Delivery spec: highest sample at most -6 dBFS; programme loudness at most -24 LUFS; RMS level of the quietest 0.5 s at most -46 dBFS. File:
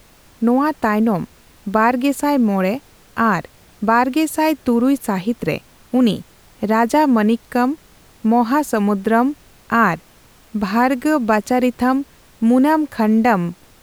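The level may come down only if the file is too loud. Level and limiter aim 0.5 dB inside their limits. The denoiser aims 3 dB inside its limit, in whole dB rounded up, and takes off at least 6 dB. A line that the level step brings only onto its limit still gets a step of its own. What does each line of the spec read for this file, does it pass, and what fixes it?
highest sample -3.5 dBFS: fail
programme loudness -17.5 LUFS: fail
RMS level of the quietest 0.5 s -49 dBFS: OK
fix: gain -7 dB

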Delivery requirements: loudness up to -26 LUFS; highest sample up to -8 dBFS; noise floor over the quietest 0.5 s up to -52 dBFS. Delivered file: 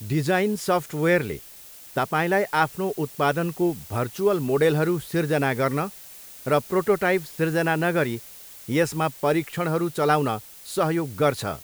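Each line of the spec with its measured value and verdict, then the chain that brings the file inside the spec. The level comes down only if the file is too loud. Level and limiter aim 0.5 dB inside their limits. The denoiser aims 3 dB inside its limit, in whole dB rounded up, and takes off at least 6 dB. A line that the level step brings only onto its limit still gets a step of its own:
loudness -24.0 LUFS: fail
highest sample -6.5 dBFS: fail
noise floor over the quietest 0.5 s -45 dBFS: fail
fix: denoiser 8 dB, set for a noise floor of -45 dBFS; gain -2.5 dB

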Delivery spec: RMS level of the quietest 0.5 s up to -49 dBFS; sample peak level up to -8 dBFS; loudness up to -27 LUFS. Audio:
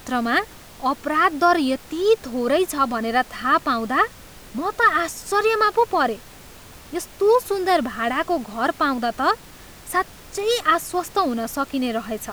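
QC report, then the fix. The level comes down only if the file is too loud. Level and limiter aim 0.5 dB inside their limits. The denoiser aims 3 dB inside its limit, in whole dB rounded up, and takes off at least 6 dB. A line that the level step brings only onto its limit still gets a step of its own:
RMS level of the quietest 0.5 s -43 dBFS: fail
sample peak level -5.5 dBFS: fail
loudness -21.5 LUFS: fail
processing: denoiser 6 dB, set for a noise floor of -43 dBFS; gain -6 dB

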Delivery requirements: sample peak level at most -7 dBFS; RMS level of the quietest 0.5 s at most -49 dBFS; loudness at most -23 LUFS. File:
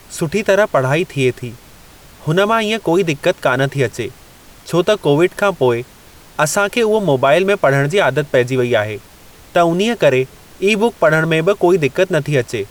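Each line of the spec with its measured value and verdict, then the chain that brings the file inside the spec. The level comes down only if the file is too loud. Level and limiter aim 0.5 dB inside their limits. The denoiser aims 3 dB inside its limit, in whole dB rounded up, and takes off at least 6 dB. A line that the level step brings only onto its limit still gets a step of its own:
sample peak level -2.5 dBFS: fail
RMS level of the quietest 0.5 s -42 dBFS: fail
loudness -15.5 LUFS: fail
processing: gain -8 dB

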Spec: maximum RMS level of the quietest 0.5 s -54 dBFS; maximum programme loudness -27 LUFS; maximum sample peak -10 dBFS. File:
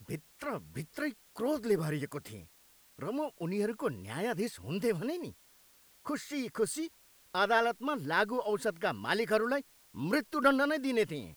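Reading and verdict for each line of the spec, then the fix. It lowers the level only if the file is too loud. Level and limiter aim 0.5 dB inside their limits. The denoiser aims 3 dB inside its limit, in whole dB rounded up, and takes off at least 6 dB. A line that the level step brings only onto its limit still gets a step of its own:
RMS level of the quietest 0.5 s -63 dBFS: OK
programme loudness -33.5 LUFS: OK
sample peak -14.0 dBFS: OK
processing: none

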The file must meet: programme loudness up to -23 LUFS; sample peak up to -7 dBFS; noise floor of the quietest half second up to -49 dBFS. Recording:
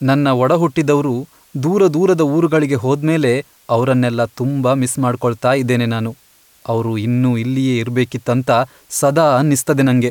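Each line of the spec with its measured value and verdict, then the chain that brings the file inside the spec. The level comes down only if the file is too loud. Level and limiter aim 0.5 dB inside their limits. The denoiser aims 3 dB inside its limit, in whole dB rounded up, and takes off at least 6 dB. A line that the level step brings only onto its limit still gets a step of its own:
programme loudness -16.0 LUFS: fail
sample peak -3.5 dBFS: fail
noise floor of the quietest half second -51 dBFS: OK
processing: gain -7.5 dB

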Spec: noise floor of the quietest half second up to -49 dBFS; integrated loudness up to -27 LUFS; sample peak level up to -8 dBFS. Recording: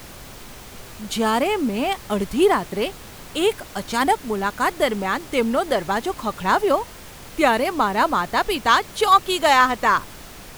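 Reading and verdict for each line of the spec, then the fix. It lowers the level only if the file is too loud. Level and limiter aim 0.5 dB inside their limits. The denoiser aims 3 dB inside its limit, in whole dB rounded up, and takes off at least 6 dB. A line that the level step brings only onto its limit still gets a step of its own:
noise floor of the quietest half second -40 dBFS: fail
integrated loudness -20.5 LUFS: fail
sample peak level -4.0 dBFS: fail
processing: denoiser 6 dB, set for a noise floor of -40 dBFS; gain -7 dB

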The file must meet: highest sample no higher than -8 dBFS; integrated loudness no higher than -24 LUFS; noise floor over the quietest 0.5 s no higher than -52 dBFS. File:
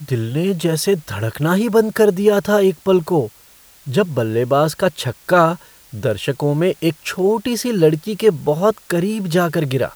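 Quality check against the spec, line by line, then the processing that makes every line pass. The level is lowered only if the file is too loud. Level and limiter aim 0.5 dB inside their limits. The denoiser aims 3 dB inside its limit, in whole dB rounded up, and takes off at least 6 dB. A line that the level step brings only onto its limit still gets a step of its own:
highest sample -2.0 dBFS: fail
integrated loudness -17.5 LUFS: fail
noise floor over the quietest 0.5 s -47 dBFS: fail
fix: gain -7 dB

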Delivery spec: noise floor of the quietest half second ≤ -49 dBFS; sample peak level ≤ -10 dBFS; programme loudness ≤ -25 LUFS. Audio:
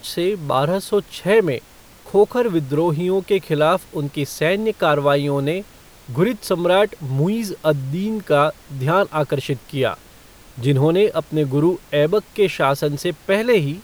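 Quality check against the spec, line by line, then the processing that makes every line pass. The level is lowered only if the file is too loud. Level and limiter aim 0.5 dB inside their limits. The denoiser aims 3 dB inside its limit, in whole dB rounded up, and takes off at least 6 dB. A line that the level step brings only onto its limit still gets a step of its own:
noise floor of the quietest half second -45 dBFS: fail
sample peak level -4.0 dBFS: fail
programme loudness -19.5 LUFS: fail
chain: gain -6 dB; limiter -10.5 dBFS

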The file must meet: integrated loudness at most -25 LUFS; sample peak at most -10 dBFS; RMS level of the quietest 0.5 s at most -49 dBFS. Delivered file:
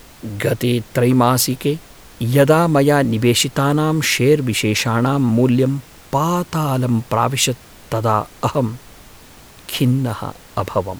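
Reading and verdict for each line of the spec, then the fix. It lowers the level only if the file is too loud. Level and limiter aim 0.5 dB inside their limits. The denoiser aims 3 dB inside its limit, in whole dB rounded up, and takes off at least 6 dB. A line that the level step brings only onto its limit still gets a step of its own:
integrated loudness -17.5 LUFS: fail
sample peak -2.0 dBFS: fail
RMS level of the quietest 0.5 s -42 dBFS: fail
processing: gain -8 dB; limiter -10.5 dBFS

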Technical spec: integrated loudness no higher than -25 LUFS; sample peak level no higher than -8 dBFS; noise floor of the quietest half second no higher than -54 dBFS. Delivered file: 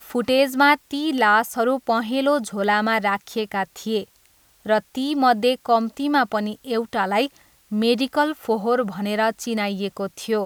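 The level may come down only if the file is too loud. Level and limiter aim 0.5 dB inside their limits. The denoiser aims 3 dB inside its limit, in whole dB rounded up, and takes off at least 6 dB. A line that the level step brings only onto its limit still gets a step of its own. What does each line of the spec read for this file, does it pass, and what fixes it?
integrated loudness -21.5 LUFS: fail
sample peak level -5.0 dBFS: fail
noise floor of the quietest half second -58 dBFS: OK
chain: gain -4 dB

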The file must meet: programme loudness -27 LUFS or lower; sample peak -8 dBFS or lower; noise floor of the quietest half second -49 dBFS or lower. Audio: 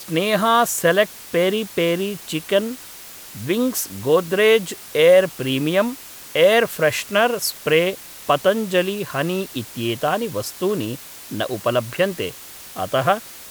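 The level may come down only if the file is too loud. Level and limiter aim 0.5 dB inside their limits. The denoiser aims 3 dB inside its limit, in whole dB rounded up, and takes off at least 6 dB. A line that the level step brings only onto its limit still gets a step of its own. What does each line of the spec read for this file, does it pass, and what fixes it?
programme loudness -20.0 LUFS: fail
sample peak -4.0 dBFS: fail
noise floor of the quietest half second -39 dBFS: fail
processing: denoiser 6 dB, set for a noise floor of -39 dBFS; gain -7.5 dB

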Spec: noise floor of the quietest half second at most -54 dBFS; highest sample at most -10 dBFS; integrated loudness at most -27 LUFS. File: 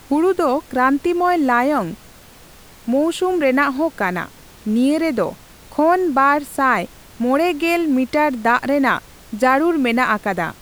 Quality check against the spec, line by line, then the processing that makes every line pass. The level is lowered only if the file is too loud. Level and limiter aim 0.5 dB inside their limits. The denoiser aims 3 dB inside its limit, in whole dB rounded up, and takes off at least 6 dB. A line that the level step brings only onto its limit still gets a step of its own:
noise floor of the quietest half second -44 dBFS: fail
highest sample -3.5 dBFS: fail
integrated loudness -18.0 LUFS: fail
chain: denoiser 6 dB, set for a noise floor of -44 dBFS; gain -9.5 dB

